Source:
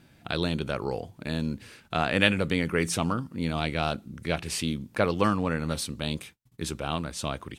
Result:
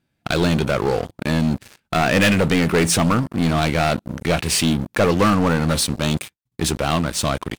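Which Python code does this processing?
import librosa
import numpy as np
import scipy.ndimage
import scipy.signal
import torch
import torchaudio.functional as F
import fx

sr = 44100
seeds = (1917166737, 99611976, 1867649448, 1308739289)

y = fx.leveller(x, sr, passes=5)
y = y * 10.0 ** (-5.0 / 20.0)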